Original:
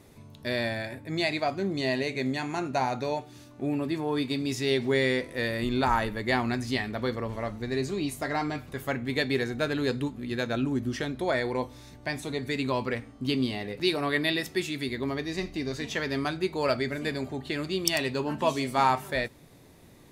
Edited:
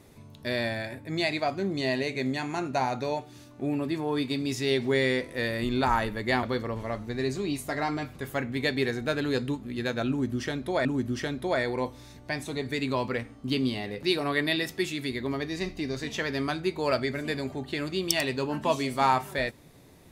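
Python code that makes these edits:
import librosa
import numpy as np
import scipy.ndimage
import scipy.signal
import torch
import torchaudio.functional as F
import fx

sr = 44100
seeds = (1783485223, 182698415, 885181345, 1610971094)

y = fx.edit(x, sr, fx.cut(start_s=6.43, length_s=0.53),
    fx.repeat(start_s=10.62, length_s=0.76, count=2), tone=tone)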